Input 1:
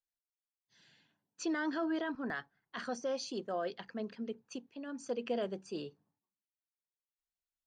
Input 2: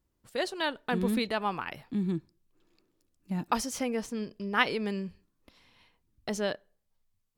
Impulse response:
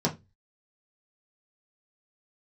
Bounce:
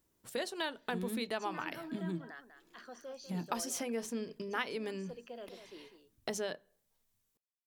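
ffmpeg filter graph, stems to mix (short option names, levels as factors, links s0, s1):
-filter_complex "[0:a]highpass=220,volume=0.299,asplit=2[s0][s1];[s1]volume=0.316[s2];[1:a]highshelf=f=5800:g=7,acompressor=threshold=0.01:ratio=3,volume=1.33,asplit=2[s3][s4];[s4]volume=0.0668[s5];[2:a]atrim=start_sample=2205[s6];[s5][s6]afir=irnorm=-1:irlink=0[s7];[s2]aecho=0:1:197:1[s8];[s0][s3][s7][s8]amix=inputs=4:normalize=0,lowshelf=f=130:g=-10"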